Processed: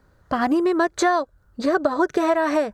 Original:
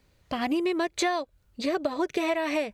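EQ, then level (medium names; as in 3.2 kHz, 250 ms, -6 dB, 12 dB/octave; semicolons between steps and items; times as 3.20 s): resonant high shelf 1.9 kHz -8 dB, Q 3; dynamic bell 6.3 kHz, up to +6 dB, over -50 dBFS, Q 0.72; +6.5 dB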